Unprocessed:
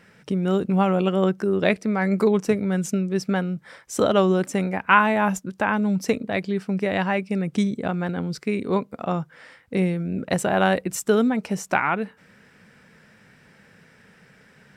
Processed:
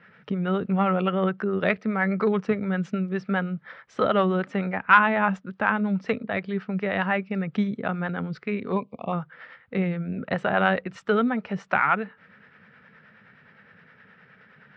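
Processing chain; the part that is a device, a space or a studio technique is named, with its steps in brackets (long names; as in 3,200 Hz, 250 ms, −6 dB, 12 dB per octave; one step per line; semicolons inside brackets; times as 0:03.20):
0:08.72–0:09.13: elliptic band-stop filter 1,100–2,300 Hz
guitar amplifier with harmonic tremolo (two-band tremolo in antiphase 9.6 Hz, depth 50%, crossover 460 Hz; soft clipping −7.5 dBFS, distortion −24 dB; loudspeaker in its box 91–3,600 Hz, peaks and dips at 320 Hz −7 dB, 1,300 Hz +7 dB, 1,800 Hz +4 dB)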